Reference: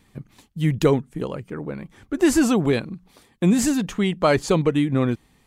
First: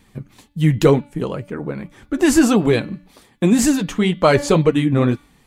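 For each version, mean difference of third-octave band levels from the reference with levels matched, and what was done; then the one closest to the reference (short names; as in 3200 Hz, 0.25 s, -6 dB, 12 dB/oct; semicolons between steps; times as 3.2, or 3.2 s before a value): 1.0 dB: de-hum 289 Hz, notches 17; flange 1.9 Hz, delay 3 ms, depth 7.3 ms, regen -48%; gain +8.5 dB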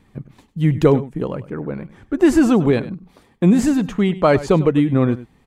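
3.0 dB: high shelf 2700 Hz -11.5 dB; echo 99 ms -16.5 dB; gain +4.5 dB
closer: first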